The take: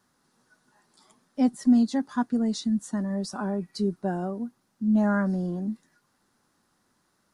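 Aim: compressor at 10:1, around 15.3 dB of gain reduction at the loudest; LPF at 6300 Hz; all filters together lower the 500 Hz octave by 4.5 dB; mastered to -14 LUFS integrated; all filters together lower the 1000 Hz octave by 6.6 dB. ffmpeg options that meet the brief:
-af "lowpass=6.3k,equalizer=f=500:t=o:g=-4,equalizer=f=1k:t=o:g=-7.5,acompressor=threshold=-32dB:ratio=10,volume=23dB"

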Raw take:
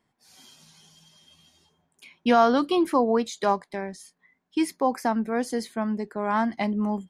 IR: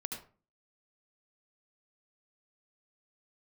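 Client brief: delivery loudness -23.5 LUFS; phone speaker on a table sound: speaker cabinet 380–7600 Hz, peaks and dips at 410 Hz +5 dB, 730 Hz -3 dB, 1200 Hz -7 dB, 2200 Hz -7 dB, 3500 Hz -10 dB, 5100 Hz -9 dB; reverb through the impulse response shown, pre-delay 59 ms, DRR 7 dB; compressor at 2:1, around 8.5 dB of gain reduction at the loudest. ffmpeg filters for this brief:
-filter_complex "[0:a]acompressor=threshold=-29dB:ratio=2,asplit=2[a][b];[1:a]atrim=start_sample=2205,adelay=59[c];[b][c]afir=irnorm=-1:irlink=0,volume=-7dB[d];[a][d]amix=inputs=2:normalize=0,highpass=f=380:w=0.5412,highpass=f=380:w=1.3066,equalizer=f=410:t=q:w=4:g=5,equalizer=f=730:t=q:w=4:g=-3,equalizer=f=1.2k:t=q:w=4:g=-7,equalizer=f=2.2k:t=q:w=4:g=-7,equalizer=f=3.5k:t=q:w=4:g=-10,equalizer=f=5.1k:t=q:w=4:g=-9,lowpass=f=7.6k:w=0.5412,lowpass=f=7.6k:w=1.3066,volume=9.5dB"

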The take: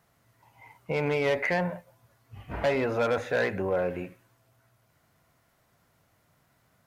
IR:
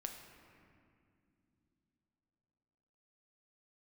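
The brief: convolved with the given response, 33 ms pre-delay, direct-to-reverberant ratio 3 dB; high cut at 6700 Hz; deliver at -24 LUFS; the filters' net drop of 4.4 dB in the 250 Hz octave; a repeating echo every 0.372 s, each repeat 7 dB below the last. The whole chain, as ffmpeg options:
-filter_complex "[0:a]lowpass=6.7k,equalizer=f=250:t=o:g=-6.5,aecho=1:1:372|744|1116|1488|1860:0.447|0.201|0.0905|0.0407|0.0183,asplit=2[a][b];[1:a]atrim=start_sample=2205,adelay=33[c];[b][c]afir=irnorm=-1:irlink=0,volume=-0.5dB[d];[a][d]amix=inputs=2:normalize=0,volume=4.5dB"

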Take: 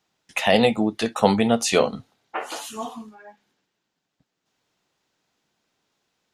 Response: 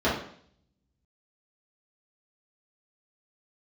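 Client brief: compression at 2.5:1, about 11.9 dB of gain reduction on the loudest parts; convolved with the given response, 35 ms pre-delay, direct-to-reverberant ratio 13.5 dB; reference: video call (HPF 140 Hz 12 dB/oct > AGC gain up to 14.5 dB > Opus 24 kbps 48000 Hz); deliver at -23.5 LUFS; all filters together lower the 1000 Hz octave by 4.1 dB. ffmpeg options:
-filter_complex "[0:a]equalizer=f=1k:t=o:g=-6,acompressor=threshold=-32dB:ratio=2.5,asplit=2[a][b];[1:a]atrim=start_sample=2205,adelay=35[c];[b][c]afir=irnorm=-1:irlink=0,volume=-29dB[d];[a][d]amix=inputs=2:normalize=0,highpass=140,dynaudnorm=m=14.5dB,volume=10.5dB" -ar 48000 -c:a libopus -b:a 24k

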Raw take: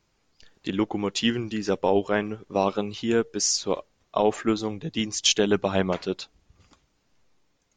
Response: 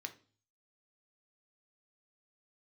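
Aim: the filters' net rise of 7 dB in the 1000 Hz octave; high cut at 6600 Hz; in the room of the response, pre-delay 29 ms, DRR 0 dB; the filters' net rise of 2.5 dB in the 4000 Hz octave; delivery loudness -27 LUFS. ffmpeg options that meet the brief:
-filter_complex "[0:a]lowpass=6.6k,equalizer=f=1k:t=o:g=9,equalizer=f=4k:t=o:g=3.5,asplit=2[a][b];[1:a]atrim=start_sample=2205,adelay=29[c];[b][c]afir=irnorm=-1:irlink=0,volume=2.5dB[d];[a][d]amix=inputs=2:normalize=0,volume=-6dB"

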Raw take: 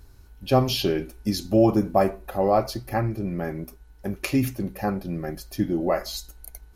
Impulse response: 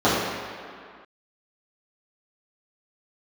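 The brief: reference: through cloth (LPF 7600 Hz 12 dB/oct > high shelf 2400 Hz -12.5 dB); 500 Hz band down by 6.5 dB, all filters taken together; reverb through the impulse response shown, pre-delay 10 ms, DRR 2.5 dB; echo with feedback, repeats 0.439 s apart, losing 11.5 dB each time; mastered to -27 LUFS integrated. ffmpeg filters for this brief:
-filter_complex "[0:a]equalizer=f=500:t=o:g=-8,aecho=1:1:439|878|1317:0.266|0.0718|0.0194,asplit=2[a][b];[1:a]atrim=start_sample=2205,adelay=10[c];[b][c]afir=irnorm=-1:irlink=0,volume=-25dB[d];[a][d]amix=inputs=2:normalize=0,lowpass=7.6k,highshelf=f=2.4k:g=-12.5,volume=-2dB"

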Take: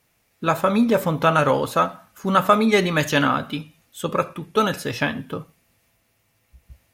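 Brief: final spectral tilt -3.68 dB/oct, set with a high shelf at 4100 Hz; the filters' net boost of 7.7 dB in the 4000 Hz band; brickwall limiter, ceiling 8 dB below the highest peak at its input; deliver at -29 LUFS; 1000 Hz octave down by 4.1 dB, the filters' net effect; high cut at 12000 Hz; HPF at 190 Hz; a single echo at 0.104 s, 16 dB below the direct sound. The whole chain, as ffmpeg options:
-af "highpass=190,lowpass=12k,equalizer=f=1k:t=o:g=-7,equalizer=f=4k:t=o:g=7.5,highshelf=f=4.1k:g=5,alimiter=limit=-10.5dB:level=0:latency=1,aecho=1:1:104:0.158,volume=-5.5dB"

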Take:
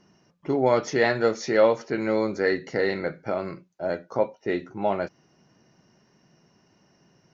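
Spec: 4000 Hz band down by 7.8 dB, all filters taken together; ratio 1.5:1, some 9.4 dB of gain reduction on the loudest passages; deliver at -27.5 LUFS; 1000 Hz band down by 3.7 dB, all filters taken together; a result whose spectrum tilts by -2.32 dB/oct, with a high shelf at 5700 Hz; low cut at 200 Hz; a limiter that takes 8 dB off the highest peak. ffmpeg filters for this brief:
-af "highpass=200,equalizer=f=1k:t=o:g=-4.5,equalizer=f=4k:t=o:g=-6.5,highshelf=f=5.7k:g=-7,acompressor=threshold=-43dB:ratio=1.5,volume=11dB,alimiter=limit=-15.5dB:level=0:latency=1"

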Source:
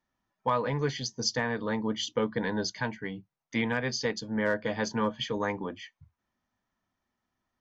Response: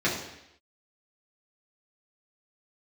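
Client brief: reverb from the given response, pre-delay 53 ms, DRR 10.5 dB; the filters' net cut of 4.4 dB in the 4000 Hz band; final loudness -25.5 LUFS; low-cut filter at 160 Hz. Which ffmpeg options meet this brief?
-filter_complex "[0:a]highpass=160,equalizer=f=4k:t=o:g=-6,asplit=2[a][b];[1:a]atrim=start_sample=2205,adelay=53[c];[b][c]afir=irnorm=-1:irlink=0,volume=-23.5dB[d];[a][d]amix=inputs=2:normalize=0,volume=6dB"

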